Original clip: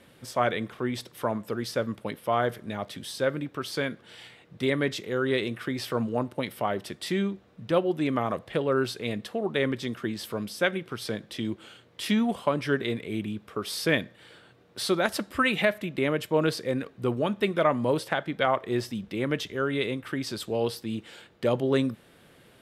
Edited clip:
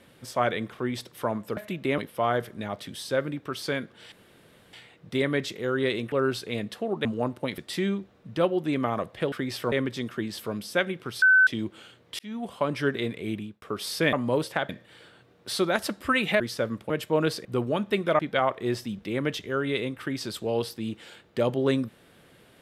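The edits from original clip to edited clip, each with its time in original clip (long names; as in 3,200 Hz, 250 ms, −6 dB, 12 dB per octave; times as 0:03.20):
0:01.57–0:02.07: swap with 0:15.70–0:16.11
0:04.21: splice in room tone 0.61 s
0:05.60–0:06.00: swap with 0:08.65–0:09.58
0:06.53–0:06.91: remove
0:11.08–0:11.33: beep over 1,520 Hz −14 dBFS
0:12.05–0:12.57: fade in
0:13.20–0:13.48: fade out
0:16.66–0:16.95: remove
0:17.69–0:18.25: move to 0:13.99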